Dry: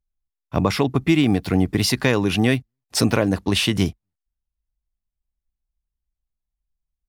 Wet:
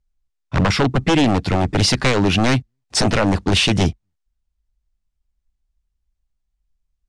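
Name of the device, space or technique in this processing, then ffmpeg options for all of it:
synthesiser wavefolder: -af "lowshelf=frequency=120:gain=5,aeval=exprs='0.2*(abs(mod(val(0)/0.2+3,4)-2)-1)':channel_layout=same,lowpass=frequency=8400:width=0.5412,lowpass=frequency=8400:width=1.3066,volume=5dB"

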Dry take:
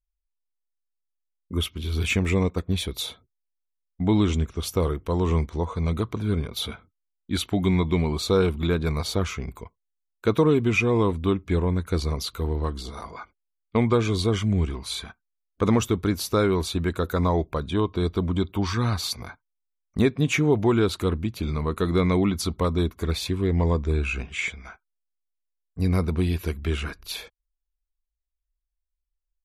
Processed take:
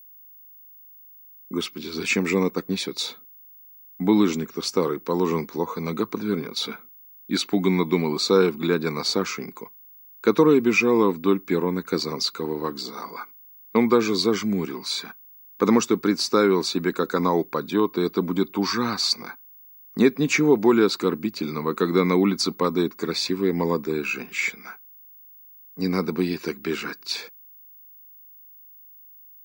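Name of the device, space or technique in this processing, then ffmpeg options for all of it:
old television with a line whistle: -af "highpass=frequency=200:width=0.5412,highpass=frequency=200:width=1.3066,equalizer=frequency=640:width_type=q:width=4:gain=-9,equalizer=frequency=3200:width_type=q:width=4:gain=-10,equalizer=frequency=4800:width_type=q:width=4:gain=7,lowpass=frequency=7700:width=0.5412,lowpass=frequency=7700:width=1.3066,aeval=exprs='val(0)+0.00316*sin(2*PI*15625*n/s)':channel_layout=same,volume=4.5dB"

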